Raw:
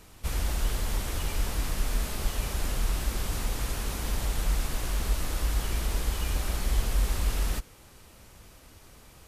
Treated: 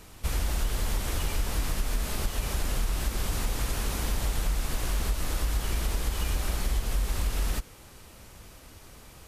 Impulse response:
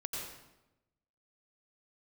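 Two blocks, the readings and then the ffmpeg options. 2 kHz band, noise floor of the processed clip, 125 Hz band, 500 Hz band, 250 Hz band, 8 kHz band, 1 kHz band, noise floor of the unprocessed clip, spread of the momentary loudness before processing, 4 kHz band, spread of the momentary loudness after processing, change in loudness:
+0.5 dB, −50 dBFS, 0.0 dB, +0.5 dB, +0.5 dB, +0.5 dB, +0.5 dB, −53 dBFS, 3 LU, +0.5 dB, 19 LU, 0.0 dB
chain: -af "acompressor=threshold=-26dB:ratio=6,volume=3dB"

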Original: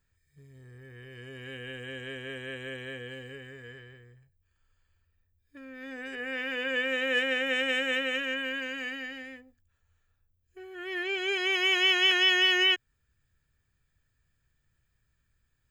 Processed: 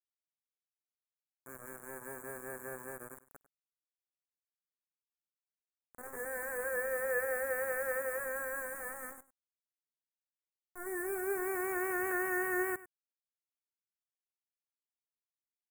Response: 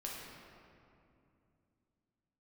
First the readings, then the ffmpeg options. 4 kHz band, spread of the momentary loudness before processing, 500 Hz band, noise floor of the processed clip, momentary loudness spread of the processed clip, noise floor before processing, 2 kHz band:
below −40 dB, 23 LU, −2.0 dB, below −85 dBFS, 15 LU, −76 dBFS, −10.0 dB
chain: -af "afftfilt=real='re*between(b*sr/4096,310,7000)':imag='im*between(b*sr/4096,310,7000)':win_size=4096:overlap=0.75,acrusher=bits=5:mix=0:aa=0.000001,asuperstop=centerf=3800:order=8:qfactor=0.57,aecho=1:1:99:0.133,volume=-2dB"

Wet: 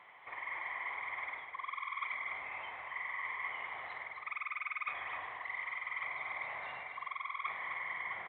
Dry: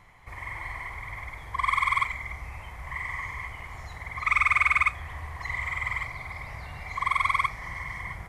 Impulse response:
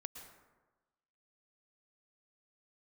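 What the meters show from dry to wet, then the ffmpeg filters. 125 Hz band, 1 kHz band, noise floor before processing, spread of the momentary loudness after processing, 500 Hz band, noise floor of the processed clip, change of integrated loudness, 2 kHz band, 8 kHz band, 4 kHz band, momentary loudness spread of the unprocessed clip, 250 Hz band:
below −25 dB, −12.0 dB, −43 dBFS, 5 LU, −4.5 dB, −51 dBFS, −12.0 dB, −10.5 dB, below −30 dB, −11.0 dB, 18 LU, can't be measured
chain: -af "highpass=480,areverse,acompressor=threshold=-37dB:ratio=12,areverse,aecho=1:1:256:0.398,aresample=8000,aresample=44100"

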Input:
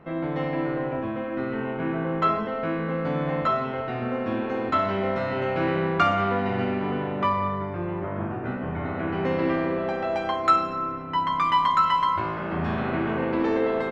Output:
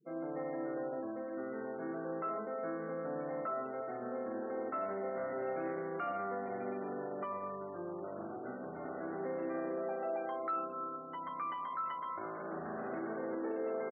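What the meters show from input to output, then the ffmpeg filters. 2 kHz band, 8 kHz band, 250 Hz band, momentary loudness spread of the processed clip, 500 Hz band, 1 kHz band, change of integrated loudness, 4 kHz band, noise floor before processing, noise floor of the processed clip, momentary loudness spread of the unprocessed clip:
−16.5 dB, can't be measured, −14.5 dB, 5 LU, −10.5 dB, −15.5 dB, −14.0 dB, below −25 dB, −31 dBFS, −44 dBFS, 8 LU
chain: -af "lowpass=1300,aecho=1:1:442|884|1326:0.1|0.037|0.0137,afftfilt=real='re*gte(hypot(re,im),0.0126)':imag='im*gte(hypot(re,im),0.0126)':win_size=1024:overlap=0.75,alimiter=limit=-19.5dB:level=0:latency=1:release=20,highpass=340,equalizer=frequency=970:width=4.9:gain=-9,volume=-8dB"

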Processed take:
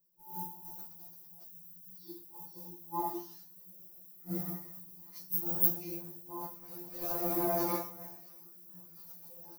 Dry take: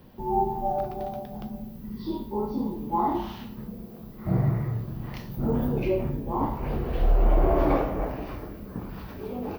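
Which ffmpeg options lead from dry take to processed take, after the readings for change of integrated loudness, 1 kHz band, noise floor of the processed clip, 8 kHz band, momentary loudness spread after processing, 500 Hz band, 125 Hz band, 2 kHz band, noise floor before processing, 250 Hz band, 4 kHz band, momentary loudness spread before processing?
−6.0 dB, −13.0 dB, −55 dBFS, can't be measured, 20 LU, −13.0 dB, −19.5 dB, −11.5 dB, −42 dBFS, −13.0 dB, −6.5 dB, 15 LU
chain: -af "aexciter=amount=12.8:drive=7.6:freq=4800,agate=range=-33dB:threshold=-14dB:ratio=3:detection=peak,afftfilt=real='re*2.83*eq(mod(b,8),0)':imag='im*2.83*eq(mod(b,8),0)':win_size=2048:overlap=0.75,volume=-1.5dB"

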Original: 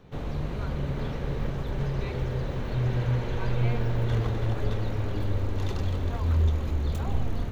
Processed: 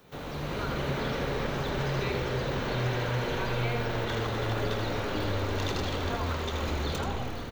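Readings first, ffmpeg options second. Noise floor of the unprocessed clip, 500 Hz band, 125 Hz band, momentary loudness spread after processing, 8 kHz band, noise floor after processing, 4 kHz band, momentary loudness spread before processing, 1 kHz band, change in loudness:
−32 dBFS, +3.5 dB, −5.5 dB, 3 LU, can't be measured, −37 dBFS, +8.5 dB, 6 LU, +5.5 dB, −1.5 dB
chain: -filter_complex "[0:a]aemphasis=mode=production:type=bsi,dynaudnorm=framelen=160:gausssize=7:maxgain=9.5dB,equalizer=frequency=1400:width=7.4:gain=3,acrossover=split=420|6000[link_01][link_02][link_03];[link_01]acompressor=threshold=-31dB:ratio=4[link_04];[link_02]acompressor=threshold=-33dB:ratio=4[link_05];[link_03]acompressor=threshold=-59dB:ratio=4[link_06];[link_04][link_05][link_06]amix=inputs=3:normalize=0,asplit=2[link_07][link_08];[link_08]aecho=0:1:81:0.473[link_09];[link_07][link_09]amix=inputs=2:normalize=0"

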